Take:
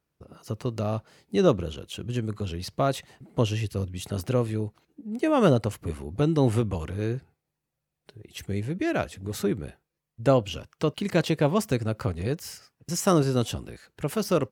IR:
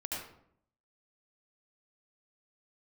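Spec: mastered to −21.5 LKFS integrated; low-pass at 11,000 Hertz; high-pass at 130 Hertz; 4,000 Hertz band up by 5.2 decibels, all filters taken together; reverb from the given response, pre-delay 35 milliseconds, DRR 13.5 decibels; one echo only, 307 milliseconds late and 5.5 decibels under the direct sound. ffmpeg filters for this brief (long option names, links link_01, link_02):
-filter_complex "[0:a]highpass=130,lowpass=11000,equalizer=frequency=4000:width_type=o:gain=7,aecho=1:1:307:0.531,asplit=2[link_01][link_02];[1:a]atrim=start_sample=2205,adelay=35[link_03];[link_02][link_03]afir=irnorm=-1:irlink=0,volume=-15.5dB[link_04];[link_01][link_04]amix=inputs=2:normalize=0,volume=5dB"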